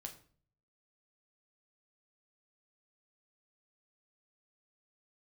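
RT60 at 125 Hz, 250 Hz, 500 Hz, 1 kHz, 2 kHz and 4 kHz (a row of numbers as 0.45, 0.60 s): 0.90, 0.60, 0.50, 0.45, 0.40, 0.35 s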